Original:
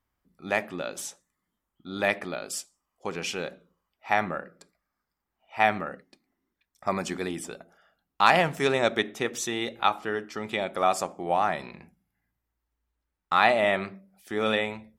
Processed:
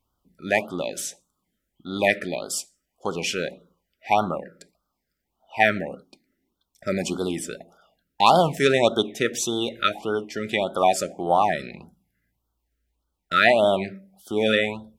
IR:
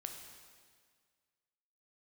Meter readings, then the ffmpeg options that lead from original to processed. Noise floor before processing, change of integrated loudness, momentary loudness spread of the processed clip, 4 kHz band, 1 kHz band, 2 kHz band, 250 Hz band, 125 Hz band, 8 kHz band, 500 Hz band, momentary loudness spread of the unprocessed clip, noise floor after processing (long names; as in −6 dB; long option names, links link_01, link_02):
−84 dBFS, +4.0 dB, 15 LU, +5.0 dB, +3.0 dB, +3.0 dB, +5.5 dB, +5.5 dB, +5.5 dB, +5.5 dB, 16 LU, −79 dBFS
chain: -af "afftfilt=real='re*(1-between(b*sr/1024,880*pow(2200/880,0.5+0.5*sin(2*PI*1.7*pts/sr))/1.41,880*pow(2200/880,0.5+0.5*sin(2*PI*1.7*pts/sr))*1.41))':imag='im*(1-between(b*sr/1024,880*pow(2200/880,0.5+0.5*sin(2*PI*1.7*pts/sr))/1.41,880*pow(2200/880,0.5+0.5*sin(2*PI*1.7*pts/sr))*1.41))':win_size=1024:overlap=0.75,volume=5.5dB"